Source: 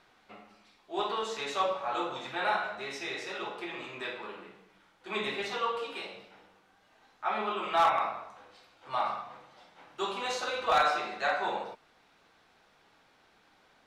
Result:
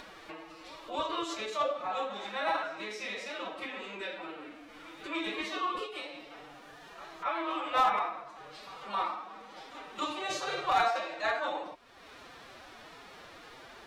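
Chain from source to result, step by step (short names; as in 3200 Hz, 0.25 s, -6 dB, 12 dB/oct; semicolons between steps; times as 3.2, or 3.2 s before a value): upward compressor, threshold -35 dBFS; formant-preserving pitch shift +7.5 st; reverse echo 0.271 s -17.5 dB; gain -1 dB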